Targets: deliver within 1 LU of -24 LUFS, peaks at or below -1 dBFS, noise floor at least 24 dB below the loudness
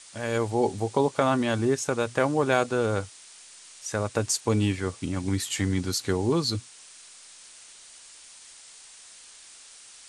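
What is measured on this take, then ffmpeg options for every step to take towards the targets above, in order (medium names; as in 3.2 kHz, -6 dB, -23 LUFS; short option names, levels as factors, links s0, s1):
noise floor -49 dBFS; noise floor target -51 dBFS; loudness -26.5 LUFS; peak level -8.0 dBFS; loudness target -24.0 LUFS
-> -af "afftdn=nr=6:nf=-49"
-af "volume=1.33"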